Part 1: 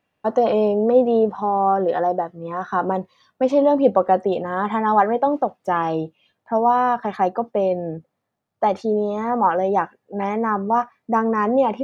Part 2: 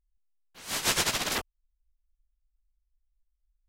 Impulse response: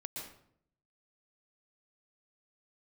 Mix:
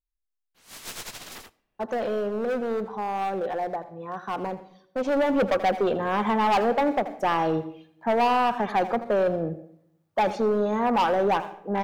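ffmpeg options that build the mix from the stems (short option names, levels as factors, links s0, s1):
-filter_complex "[0:a]asoftclip=type=hard:threshold=0.158,adelay=1550,volume=0.891,afade=t=in:st=4.88:d=0.56:silence=0.421697,asplit=3[s0][s1][s2];[s1]volume=0.211[s3];[s2]volume=0.2[s4];[1:a]aeval=exprs='(tanh(8.91*val(0)+0.75)-tanh(0.75))/8.91':c=same,volume=0.355,asplit=3[s5][s6][s7];[s6]volume=0.0944[s8];[s7]volume=0.531[s9];[2:a]atrim=start_sample=2205[s10];[s3][s8]amix=inputs=2:normalize=0[s11];[s11][s10]afir=irnorm=-1:irlink=0[s12];[s4][s9]amix=inputs=2:normalize=0,aecho=0:1:82:1[s13];[s0][s5][s12][s13]amix=inputs=4:normalize=0,highshelf=f=12000:g=5.5,asoftclip=type=tanh:threshold=0.168"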